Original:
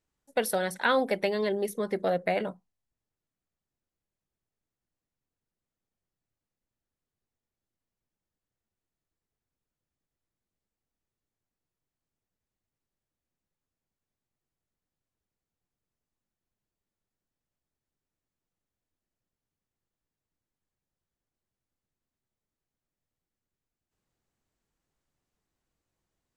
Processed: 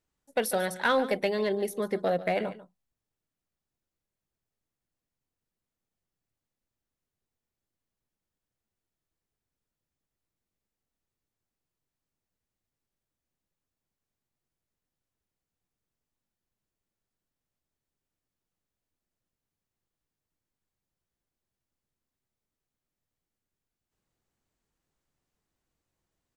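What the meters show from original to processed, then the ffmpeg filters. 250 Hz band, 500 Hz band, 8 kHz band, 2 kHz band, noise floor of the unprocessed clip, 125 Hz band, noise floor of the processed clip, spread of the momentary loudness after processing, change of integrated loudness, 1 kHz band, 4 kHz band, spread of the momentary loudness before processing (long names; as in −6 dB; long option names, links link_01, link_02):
0.0 dB, 0.0 dB, +0.5 dB, −0.5 dB, below −85 dBFS, +0.5 dB, below −85 dBFS, 7 LU, 0.0 dB, 0.0 dB, −0.5 dB, 6 LU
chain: -filter_complex "[0:a]asplit=2[link_01][link_02];[link_02]volume=21dB,asoftclip=hard,volume=-21dB,volume=-5.5dB[link_03];[link_01][link_03]amix=inputs=2:normalize=0,aecho=1:1:144:0.158,volume=-3.5dB"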